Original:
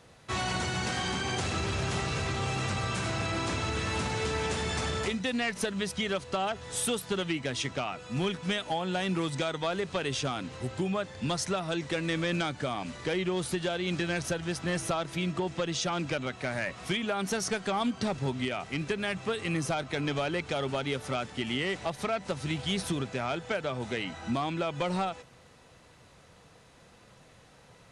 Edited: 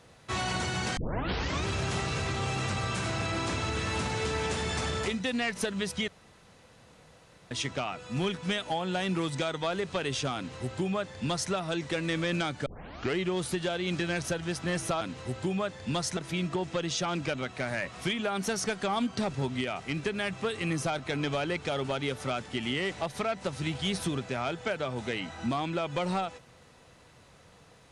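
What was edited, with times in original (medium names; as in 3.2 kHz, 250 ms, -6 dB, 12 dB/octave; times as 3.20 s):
0.97 s: tape start 0.68 s
6.08–7.51 s: room tone
10.36–11.52 s: copy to 15.01 s
12.66 s: tape start 0.52 s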